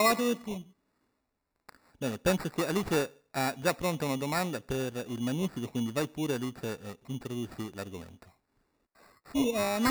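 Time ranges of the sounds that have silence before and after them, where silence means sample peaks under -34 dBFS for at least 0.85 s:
1.69–8.01 s

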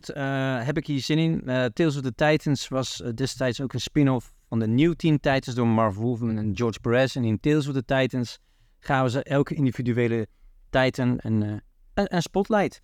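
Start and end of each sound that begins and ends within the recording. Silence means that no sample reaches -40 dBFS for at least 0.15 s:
4.52–8.35 s
8.85–10.25 s
10.73–11.59 s

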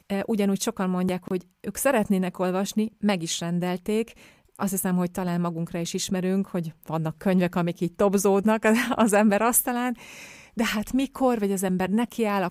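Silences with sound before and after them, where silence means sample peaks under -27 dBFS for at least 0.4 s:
4.08–4.61 s
9.93–10.58 s

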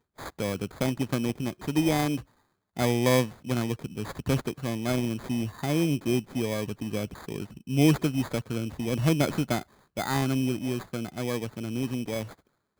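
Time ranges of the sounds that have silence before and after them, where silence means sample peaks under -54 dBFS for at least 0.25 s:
2.77–12.40 s

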